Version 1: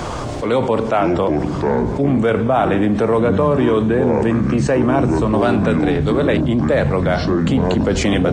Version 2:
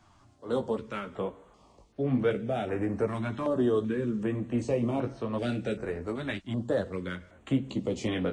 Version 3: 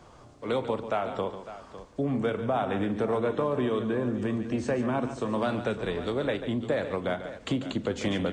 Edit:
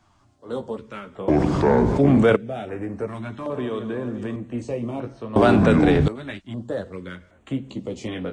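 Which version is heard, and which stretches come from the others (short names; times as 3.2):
2
1.28–2.36 from 1
3.5–4.36 from 3
5.36–6.08 from 1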